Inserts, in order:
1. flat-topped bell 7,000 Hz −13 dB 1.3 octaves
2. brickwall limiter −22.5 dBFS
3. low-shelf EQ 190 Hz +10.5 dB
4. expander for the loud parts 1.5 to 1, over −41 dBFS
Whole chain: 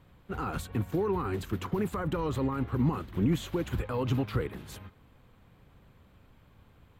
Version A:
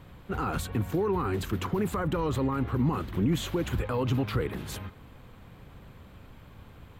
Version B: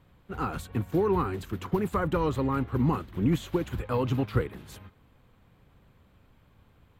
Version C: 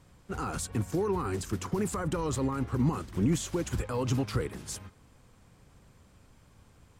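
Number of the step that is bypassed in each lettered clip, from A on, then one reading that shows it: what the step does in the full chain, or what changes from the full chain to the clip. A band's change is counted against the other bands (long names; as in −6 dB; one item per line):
4, 8 kHz band +3.0 dB
2, change in crest factor +2.0 dB
1, 8 kHz band +12.0 dB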